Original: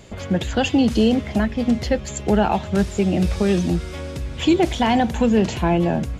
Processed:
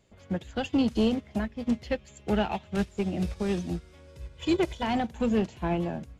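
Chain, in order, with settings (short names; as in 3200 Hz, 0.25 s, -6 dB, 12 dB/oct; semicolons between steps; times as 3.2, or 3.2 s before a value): 1.71–2.89 dynamic EQ 2700 Hz, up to +7 dB, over -44 dBFS, Q 1.6; 4.07–4.83 comb 2 ms, depth 55%; soft clip -11 dBFS, distortion -19 dB; upward expander 2.5:1, over -27 dBFS; gain -4.5 dB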